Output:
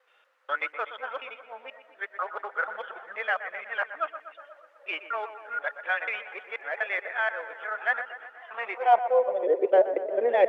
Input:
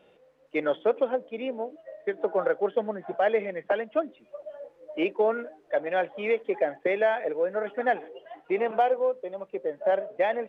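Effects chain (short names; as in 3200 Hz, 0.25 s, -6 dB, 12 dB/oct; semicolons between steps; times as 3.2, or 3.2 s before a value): local time reversal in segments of 0.243 s; high-pass sweep 1300 Hz -> 400 Hz, 8.59–9.51; dark delay 0.122 s, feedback 62%, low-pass 2400 Hz, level -11.5 dB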